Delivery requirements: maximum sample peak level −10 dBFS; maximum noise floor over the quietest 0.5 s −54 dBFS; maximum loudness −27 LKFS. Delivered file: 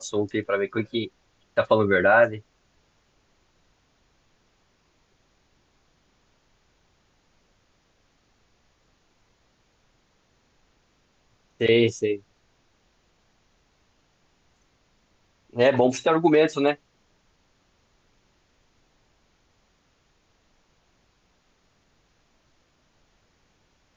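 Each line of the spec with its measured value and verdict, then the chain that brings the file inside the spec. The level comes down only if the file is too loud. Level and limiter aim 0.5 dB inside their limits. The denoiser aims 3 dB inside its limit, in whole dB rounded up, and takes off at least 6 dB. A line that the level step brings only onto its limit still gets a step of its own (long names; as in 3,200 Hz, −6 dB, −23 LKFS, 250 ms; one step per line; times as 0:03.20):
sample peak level −6.5 dBFS: out of spec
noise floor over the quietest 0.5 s −66 dBFS: in spec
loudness −22.5 LKFS: out of spec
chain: level −5 dB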